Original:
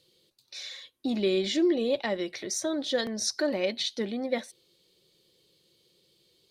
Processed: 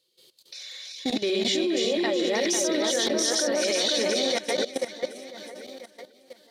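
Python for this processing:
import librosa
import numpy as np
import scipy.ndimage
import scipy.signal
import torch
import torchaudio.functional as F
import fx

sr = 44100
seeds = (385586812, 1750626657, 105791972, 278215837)

p1 = fx.reverse_delay(x, sr, ms=185, wet_db=0)
p2 = fx.bass_treble(p1, sr, bass_db=-12, treble_db=4)
p3 = p2 + fx.echo_split(p2, sr, split_hz=2100.0, low_ms=495, high_ms=366, feedback_pct=52, wet_db=-5.0, dry=0)
p4 = fx.level_steps(p3, sr, step_db=16)
y = p4 * 10.0 ** (7.5 / 20.0)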